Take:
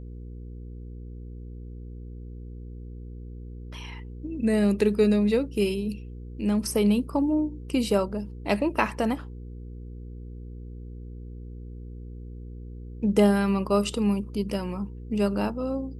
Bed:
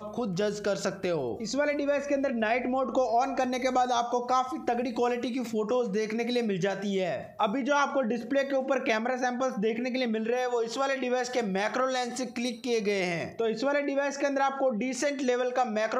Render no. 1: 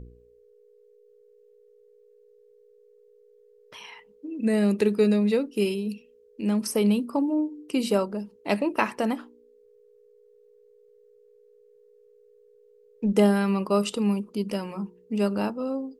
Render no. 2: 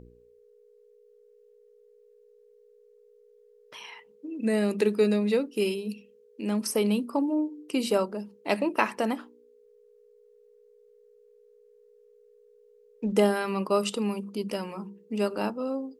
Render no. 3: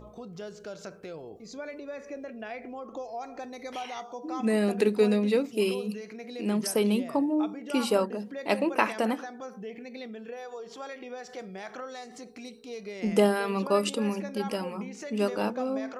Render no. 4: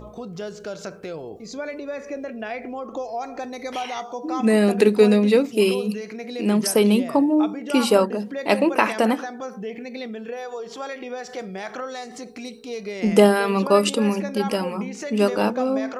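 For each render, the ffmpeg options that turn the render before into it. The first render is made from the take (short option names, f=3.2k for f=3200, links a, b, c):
-af "bandreject=f=60:t=h:w=4,bandreject=f=120:t=h:w=4,bandreject=f=180:t=h:w=4,bandreject=f=240:t=h:w=4,bandreject=f=300:t=h:w=4,bandreject=f=360:t=h:w=4"
-af "lowshelf=f=140:g=-10,bandreject=f=50:t=h:w=6,bandreject=f=100:t=h:w=6,bandreject=f=150:t=h:w=6,bandreject=f=200:t=h:w=6"
-filter_complex "[1:a]volume=-12dB[a];[0:a][a]amix=inputs=2:normalize=0"
-af "volume=8dB,alimiter=limit=-2dB:level=0:latency=1"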